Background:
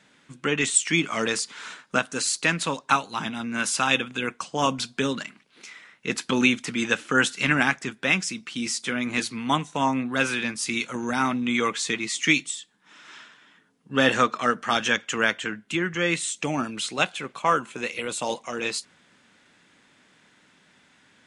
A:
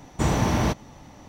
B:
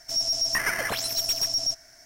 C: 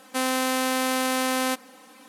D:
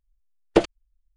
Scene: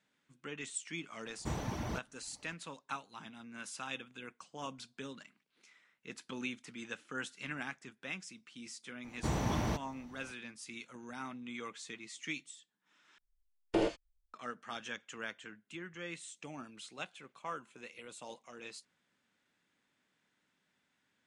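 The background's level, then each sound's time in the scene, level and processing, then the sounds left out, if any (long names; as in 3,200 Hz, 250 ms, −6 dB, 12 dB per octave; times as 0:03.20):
background −20 dB
0:01.26: mix in A −14.5 dB + reverb reduction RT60 0.68 s
0:09.04: mix in A −11.5 dB
0:13.18: overwrite with D −17 dB + reverb whose tail is shaped and stops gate 140 ms flat, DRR −5.5 dB
not used: B, C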